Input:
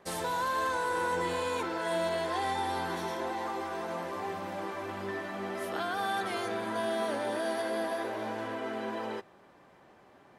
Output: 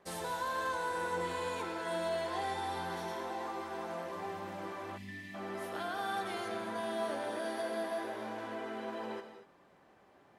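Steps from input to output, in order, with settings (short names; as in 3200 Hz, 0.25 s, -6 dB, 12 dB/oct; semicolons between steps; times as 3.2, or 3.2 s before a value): non-linear reverb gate 0.26 s flat, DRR 6 dB; spectral gain 4.98–5.35, 310–1700 Hz -20 dB; gain -6 dB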